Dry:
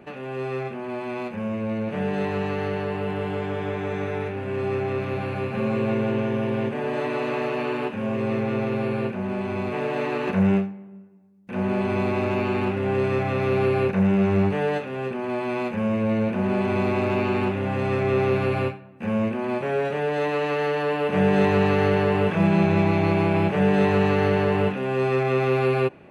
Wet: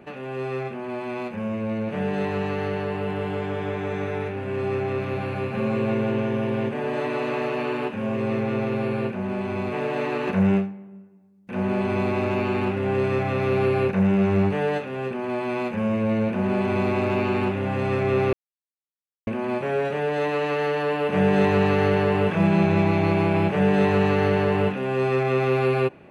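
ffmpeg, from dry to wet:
-filter_complex "[0:a]asplit=3[s0][s1][s2];[s0]atrim=end=18.33,asetpts=PTS-STARTPTS,afade=t=out:st=18.326:d=0.004:c=hsin[s3];[s1]atrim=start=18.33:end=19.27,asetpts=PTS-STARTPTS,volume=0[s4];[s2]atrim=start=19.27,asetpts=PTS-STARTPTS,afade=t=in:d=0.004:c=hsin[s5];[s3][s4][s5]concat=n=3:v=0:a=1"

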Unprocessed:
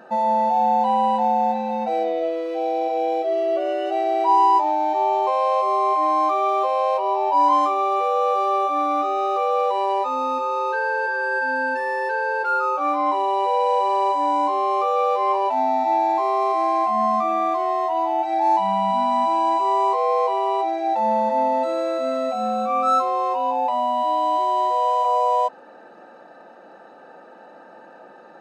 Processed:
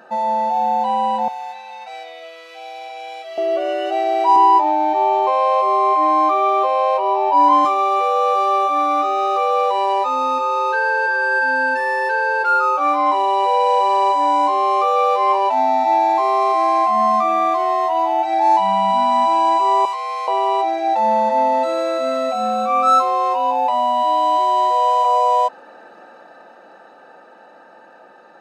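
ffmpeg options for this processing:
-filter_complex "[0:a]asettb=1/sr,asplit=3[s0][s1][s2];[s0]atrim=end=1.284[s3];[s1]atrim=start=1.28:end=3.38,asetpts=PTS-STARTPTS,afade=t=in:d=0.004:c=qsin,afade=t=out:st=2.096:d=0.004:c=qsin,highpass=1400[s4];[s2]atrim=start=3.376[s5];[s3][s4]acrossfade=d=0.004:c1=hsin:c2=qsin[s6];[s6][s5]acrossfade=d=0.004:c1=qsin:c2=hsin,asettb=1/sr,asplit=3[s7][s8][s9];[s7]atrim=end=4.364[s10];[s8]atrim=start=4.36:end=7.65,asetpts=PTS-STARTPTS,afade=t=in:d=0.004:c=qsin,afade=t=out:st=3.286:d=0.004:c=qsin,bass=f=250:g=15,treble=f=4000:g=-7[s11];[s9]atrim=start=7.646[s12];[s10][s11]acrossfade=d=0.004:c1=hsin:c2=qsin[s13];[s13][s12]acrossfade=d=0.004:c1=qsin:c2=hsin,asettb=1/sr,asplit=3[s14][s15][s16];[s14]atrim=end=19.854[s17];[s15]atrim=start=19.85:end=20.28,asetpts=PTS-STARTPTS,afade=t=in:d=0.004:c=qsin,afade=t=out:st=0.426:d=0.004:c=qsin,highpass=1400[s18];[s16]atrim=start=20.276[s19];[s17][s18]acrossfade=d=0.004:c1=hsin:c2=qsin[s20];[s20][s19]acrossfade=d=0.004:c1=qsin:c2=hsin,tiltshelf=f=720:g=-3.5,dynaudnorm=f=380:g=13:m=1.58"

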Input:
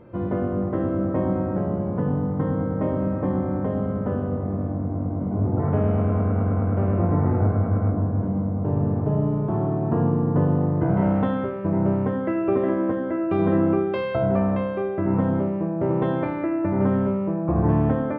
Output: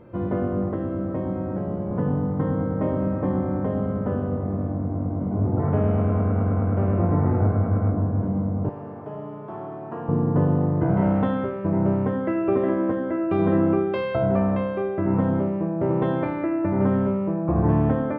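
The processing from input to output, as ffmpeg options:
-filter_complex "[0:a]asettb=1/sr,asplit=3[s0][s1][s2];[s0]atrim=end=0.734[s3];[s1]atrim=start=0.73:end=1.91,asetpts=PTS-STARTPTS,afade=t=in:d=0.004:c=qsin,afade=t=out:st=1.176:d=0.004:c=qsin,acrossover=split=210|710|2400[s4][s5][s6][s7];[s4]acompressor=threshold=0.0316:ratio=3[s8];[s5]acompressor=threshold=0.0355:ratio=3[s9];[s6]acompressor=threshold=0.00708:ratio=3[s10];[s7]acompressor=threshold=0.001:ratio=3[s11];[s8][s9][s10][s11]amix=inputs=4:normalize=0[s12];[s2]atrim=start=1.906[s13];[s3][s12]acrossfade=d=0.004:c1=hsin:c2=qsin[s14];[s14][s13]acrossfade=d=0.004:c1=qsin:c2=hsin,asettb=1/sr,asplit=3[s15][s16][s17];[s15]atrim=end=8.694[s18];[s16]atrim=start=8.69:end=10.09,asetpts=PTS-STARTPTS,afade=t=in:d=0.004:c=qsin,afade=t=out:st=1.396:d=0.004:c=qsin,highpass=f=1100:p=1[s19];[s17]atrim=start=10.086[s20];[s18][s19]acrossfade=d=0.004:c1=hsin:c2=qsin[s21];[s21][s20]acrossfade=d=0.004:c1=qsin:c2=hsin"

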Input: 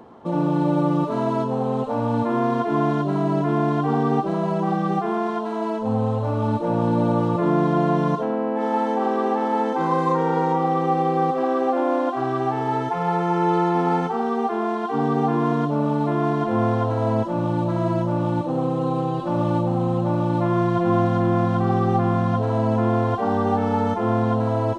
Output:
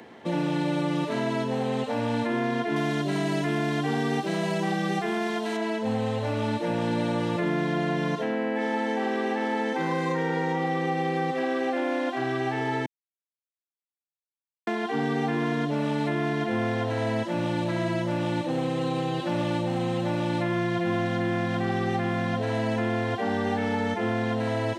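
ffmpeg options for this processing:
-filter_complex "[0:a]asettb=1/sr,asplit=3[s0][s1][s2];[s0]atrim=end=2.764[s3];[s1]atrim=start=2.76:end=5.57,asetpts=PTS-STARTPTS,afade=t=in:d=0.004:c=qsin,afade=t=out:st=2.806:d=0.004:c=qsin,highshelf=f=3900:g=11[s4];[s2]atrim=start=5.566[s5];[s3][s4]acrossfade=d=0.004:c1=hsin:c2=qsin[s6];[s6][s5]acrossfade=d=0.004:c1=qsin:c2=hsin,asplit=3[s7][s8][s9];[s7]atrim=end=12.86,asetpts=PTS-STARTPTS,afade=t=out:st=12.856:d=0.004:c=hsin[s10];[s8]atrim=start=12.86:end=14.67,asetpts=PTS-STARTPTS,volume=0[s11];[s9]atrim=start=14.67,asetpts=PTS-STARTPTS,afade=t=in:d=0.004:c=hsin[s12];[s10][s11][s12]concat=n=3:v=0:a=1,highpass=f=150:p=1,highshelf=f=1500:t=q:w=3:g=7.5,acrossover=split=230|960[s13][s14][s15];[s13]acompressor=threshold=0.0316:ratio=4[s16];[s14]acompressor=threshold=0.0398:ratio=4[s17];[s15]acompressor=threshold=0.02:ratio=4[s18];[s16][s17][s18]amix=inputs=3:normalize=0"

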